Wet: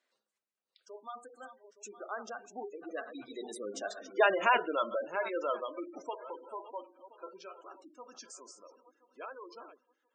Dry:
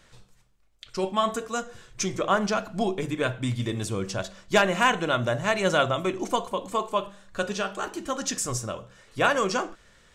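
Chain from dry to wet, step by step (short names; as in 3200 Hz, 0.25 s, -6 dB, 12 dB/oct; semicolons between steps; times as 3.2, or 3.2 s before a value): regenerating reverse delay 0.473 s, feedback 55%, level -12 dB; Doppler pass-by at 4.32, 29 m/s, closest 16 m; HPF 290 Hz 24 dB/oct; spectral gate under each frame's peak -15 dB strong; gain -3.5 dB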